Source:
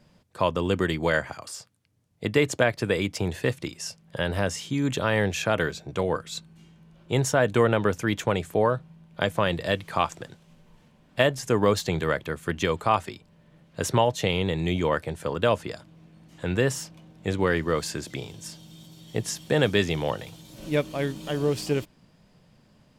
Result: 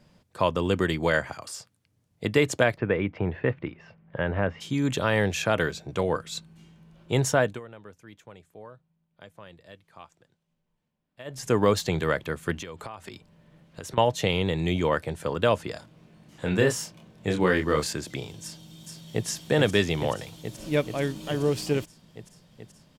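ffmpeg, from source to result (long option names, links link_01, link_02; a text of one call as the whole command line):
ffmpeg -i in.wav -filter_complex "[0:a]asplit=3[link_01][link_02][link_03];[link_01]afade=type=out:start_time=2.76:duration=0.02[link_04];[link_02]lowpass=frequency=2300:width=0.5412,lowpass=frequency=2300:width=1.3066,afade=type=in:start_time=2.76:duration=0.02,afade=type=out:start_time=4.6:duration=0.02[link_05];[link_03]afade=type=in:start_time=4.6:duration=0.02[link_06];[link_04][link_05][link_06]amix=inputs=3:normalize=0,asettb=1/sr,asplit=3[link_07][link_08][link_09];[link_07]atrim=end=12.564[link_10];[link_08]atrim=start=12.56:end=13.98,asetpts=PTS-STARTPTS,afade=type=in:duration=0.004:curve=qsin,afade=type=out:start_time=1.416:duration=0.004:curve=qsin,acompressor=threshold=-34dB:ratio=12:attack=3.2:release=140:knee=1:detection=peak[link_11];[link_09]atrim=start=13.976[link_12];[link_10][link_11]acrossfade=duration=0.004:curve1=hsin:curve2=qsin[link_13];[link_13][link_12]acrossfade=duration=0.004:curve1=qsin:curve2=hsin,asettb=1/sr,asplit=3[link_14][link_15][link_16];[link_14]atrim=end=15.734[link_17];[link_15]atrim=start=15.73:end=17.93,asetpts=PTS-STARTPTS,afade=type=in:duration=0.004:curve=qsin,afade=type=out:start_time=2.196:duration=0.004:curve=qsin,asplit=2[link_18][link_19];[link_19]adelay=27,volume=-4dB[link_20];[link_18][link_20]amix=inputs=2:normalize=0,atrim=end_sample=97020[link_21];[link_16]atrim=start=17.926[link_22];[link_17][link_21]acrossfade=duration=0.004:curve1=hsin:curve2=qsin[link_23];[link_23][link_22]acrossfade=duration=0.004:curve1=qsin:curve2=hsin,asplit=2[link_24][link_25];[link_25]afade=type=in:start_time=18.43:duration=0.01,afade=type=out:start_time=19.27:duration=0.01,aecho=0:1:430|860|1290|1720|2150|2580|3010|3440|3870|4300|4730|5160:0.630957|0.504766|0.403813|0.32305|0.25844|0.206752|0.165402|0.132321|0.105857|0.0846857|0.0677485|0.0541988[link_26];[link_24][link_26]amix=inputs=2:normalize=0,asplit=3[link_27][link_28][link_29];[link_27]atrim=end=7.6,asetpts=PTS-STARTPTS,afade=type=out:start_time=7.39:duration=0.21:silence=0.0707946[link_30];[link_28]atrim=start=7.6:end=11.25,asetpts=PTS-STARTPTS,volume=-23dB[link_31];[link_29]atrim=start=11.25,asetpts=PTS-STARTPTS,afade=type=in:duration=0.21:silence=0.0707946[link_32];[link_30][link_31][link_32]concat=n=3:v=0:a=1" out.wav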